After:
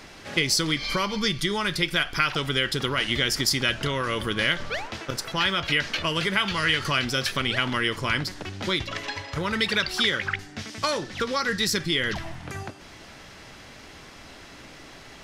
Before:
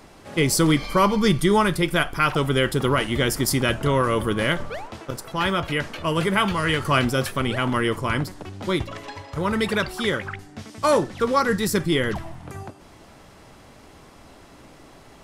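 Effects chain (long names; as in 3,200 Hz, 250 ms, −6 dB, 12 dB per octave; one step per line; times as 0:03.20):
dynamic equaliser 4,400 Hz, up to +6 dB, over −41 dBFS, Q 1.1
downward compressor, threshold −25 dBFS, peak gain reduction 12 dB
flat-topped bell 3,100 Hz +8 dB 2.4 octaves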